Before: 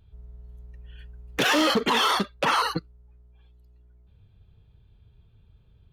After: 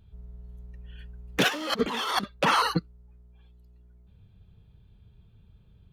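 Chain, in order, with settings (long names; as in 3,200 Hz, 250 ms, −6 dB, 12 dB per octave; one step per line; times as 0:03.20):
parametric band 190 Hz +6.5 dB 0.62 octaves
0:01.48–0:02.24: compressor whose output falls as the input rises −27 dBFS, ratio −0.5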